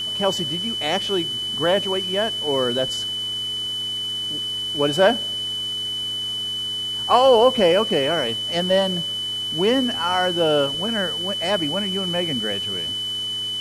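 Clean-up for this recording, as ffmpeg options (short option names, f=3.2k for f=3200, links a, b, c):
-af "bandreject=f=108.5:t=h:w=4,bandreject=f=217:t=h:w=4,bandreject=f=325.5:t=h:w=4,bandreject=f=434:t=h:w=4,bandreject=f=3k:w=30,afwtdn=0.0089"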